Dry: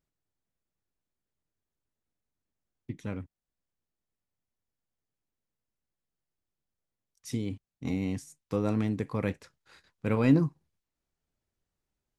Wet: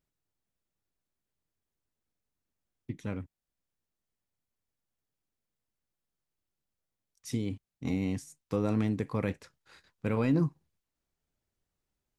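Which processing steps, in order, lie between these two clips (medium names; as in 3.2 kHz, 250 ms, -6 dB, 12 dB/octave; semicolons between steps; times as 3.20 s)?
peak limiter -18 dBFS, peak gain reduction 6.5 dB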